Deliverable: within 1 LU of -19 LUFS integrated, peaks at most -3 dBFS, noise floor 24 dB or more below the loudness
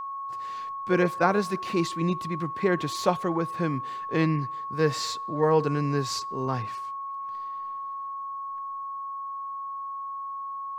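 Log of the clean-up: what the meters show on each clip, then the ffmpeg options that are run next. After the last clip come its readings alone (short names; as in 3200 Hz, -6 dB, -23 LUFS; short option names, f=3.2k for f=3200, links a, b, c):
steady tone 1100 Hz; tone level -32 dBFS; loudness -28.5 LUFS; peak -7.0 dBFS; loudness target -19.0 LUFS
-> -af "bandreject=f=1.1k:w=30"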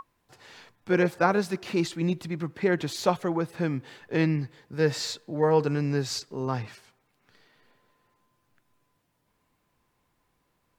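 steady tone none; loudness -27.5 LUFS; peak -7.0 dBFS; loudness target -19.0 LUFS
-> -af "volume=8.5dB,alimiter=limit=-3dB:level=0:latency=1"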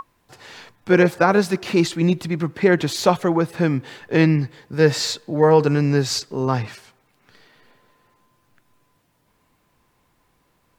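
loudness -19.5 LUFS; peak -3.0 dBFS; noise floor -65 dBFS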